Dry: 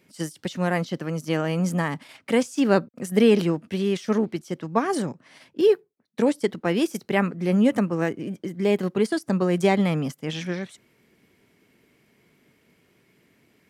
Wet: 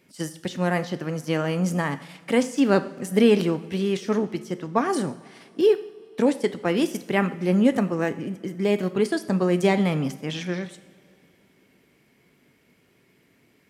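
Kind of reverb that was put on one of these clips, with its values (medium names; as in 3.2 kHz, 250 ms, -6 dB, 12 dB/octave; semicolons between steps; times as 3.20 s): two-slope reverb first 0.63 s, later 3.4 s, from -18 dB, DRR 10.5 dB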